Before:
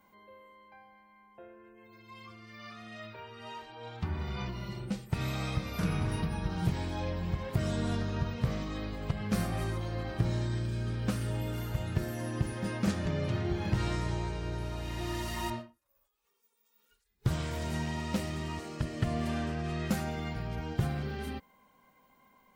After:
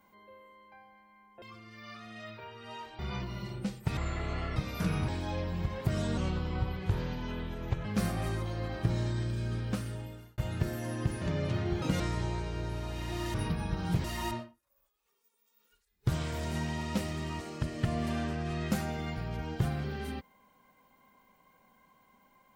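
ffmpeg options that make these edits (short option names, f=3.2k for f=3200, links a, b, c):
-filter_complex "[0:a]asplit=14[a][b][c][d][e][f][g][h][i][j][k][l][m][n];[a]atrim=end=1.422[o];[b]atrim=start=2.178:end=3.752[p];[c]atrim=start=4.248:end=5.234[q];[d]atrim=start=5.23:end=5.55,asetpts=PTS-STARTPTS,asetrate=23814,aresample=44100,atrim=end_sample=26133,asetpts=PTS-STARTPTS[r];[e]atrim=start=5.546:end=6.072[s];[f]atrim=start=6.768:end=7.864[t];[g]atrim=start=7.86:end=9.2,asetpts=PTS-STARTPTS,asetrate=35280,aresample=44100[u];[h]atrim=start=9.196:end=11.73,asetpts=PTS-STARTPTS,afade=t=out:st=1.724:d=0.81[v];[i]atrim=start=11.73:end=12.572,asetpts=PTS-STARTPTS,afade=t=in:d=0.004:c=hsin[w];[j]atrim=start=13.008:end=13.614[x];[k]atrim=start=13.61:end=13.89,asetpts=PTS-STARTPTS,asetrate=67032,aresample=44100[y];[l]atrim=start=13.886:end=15.232[z];[m]atrim=start=6.068:end=6.772[aa];[n]atrim=start=15.228[ab];[o][p]acrossfade=d=0.004:c1=hsin:c2=hsin[ac];[ac][q]acrossfade=d=0.004:c1=hsin:c2=hsin[ad];[ad][r]acrossfade=d=0.004:c1=hsin:c2=hsin[ae];[ae][s]acrossfade=d=0.004:c1=hsin:c2=hsin[af];[af][t]acrossfade=d=0.004:c1=hsin:c2=hsin[ag];[ag][u]acrossfade=d=0.004:c1=hsin:c2=hsin[ah];[v][w]concat=n=2:v=0:a=1[ai];[ah][ai]acrossfade=d=0.004:c1=hsin:c2=hsin[aj];[aj][x]acrossfade=d=0.004:c1=hsin:c2=hsin[ak];[ak][y]acrossfade=d=0.004:c1=hsin:c2=hsin[al];[al][z]acrossfade=d=0.004:c1=hsin:c2=hsin[am];[am][aa]acrossfade=d=0.004:c1=hsin:c2=hsin[an];[an][ab]acrossfade=d=0.004:c1=hsin:c2=hsin"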